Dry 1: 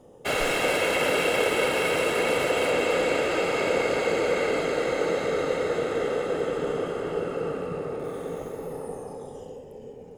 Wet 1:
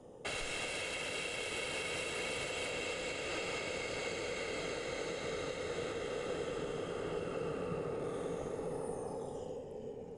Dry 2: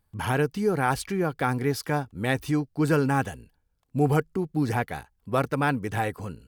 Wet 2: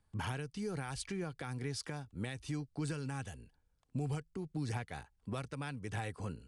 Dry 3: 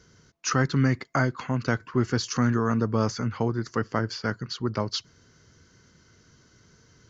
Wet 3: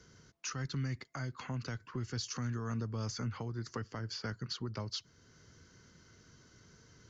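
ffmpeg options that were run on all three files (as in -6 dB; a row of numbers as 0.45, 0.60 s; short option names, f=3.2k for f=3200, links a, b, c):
-filter_complex "[0:a]acrossover=split=130|2500[a][b][c];[b]acompressor=threshold=-33dB:ratio=6[d];[a][d][c]amix=inputs=3:normalize=0,alimiter=level_in=1.5dB:limit=-24dB:level=0:latency=1:release=469,volume=-1.5dB,aresample=22050,aresample=44100,volume=-3dB"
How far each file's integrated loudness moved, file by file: -13.5, -14.5, -13.0 LU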